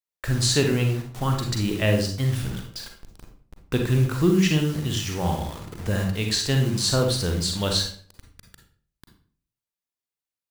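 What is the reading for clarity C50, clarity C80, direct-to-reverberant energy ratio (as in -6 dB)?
5.5 dB, 10.0 dB, 3.0 dB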